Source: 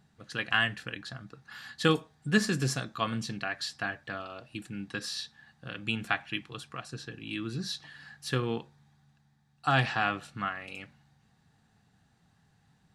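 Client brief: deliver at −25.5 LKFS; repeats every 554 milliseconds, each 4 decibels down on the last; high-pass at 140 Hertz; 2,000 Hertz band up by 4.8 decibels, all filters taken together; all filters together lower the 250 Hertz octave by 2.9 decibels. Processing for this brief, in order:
high-pass filter 140 Hz
parametric band 250 Hz −3 dB
parametric band 2,000 Hz +6.5 dB
repeating echo 554 ms, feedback 63%, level −4 dB
level +3.5 dB

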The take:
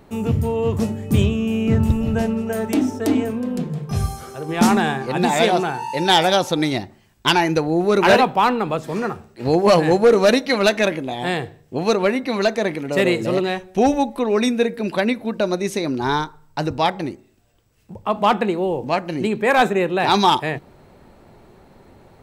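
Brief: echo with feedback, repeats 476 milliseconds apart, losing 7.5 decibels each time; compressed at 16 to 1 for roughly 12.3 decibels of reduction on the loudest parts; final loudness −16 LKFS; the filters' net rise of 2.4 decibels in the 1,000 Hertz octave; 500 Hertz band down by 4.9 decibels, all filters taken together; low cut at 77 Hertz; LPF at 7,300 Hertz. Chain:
high-pass filter 77 Hz
low-pass filter 7,300 Hz
parametric band 500 Hz −8 dB
parametric band 1,000 Hz +6 dB
downward compressor 16 to 1, threshold −21 dBFS
repeating echo 476 ms, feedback 42%, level −7.5 dB
level +10 dB

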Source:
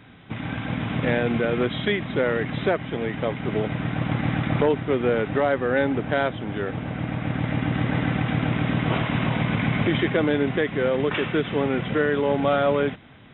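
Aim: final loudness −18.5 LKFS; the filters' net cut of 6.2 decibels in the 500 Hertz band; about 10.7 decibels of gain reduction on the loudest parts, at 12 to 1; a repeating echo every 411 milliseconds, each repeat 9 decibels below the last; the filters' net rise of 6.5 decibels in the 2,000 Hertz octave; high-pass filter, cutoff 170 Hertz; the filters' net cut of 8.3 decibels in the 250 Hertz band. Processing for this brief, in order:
high-pass filter 170 Hz
parametric band 250 Hz −8 dB
parametric band 500 Hz −5.5 dB
parametric band 2,000 Hz +8.5 dB
downward compressor 12 to 1, threshold −28 dBFS
repeating echo 411 ms, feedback 35%, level −9 dB
level +12.5 dB

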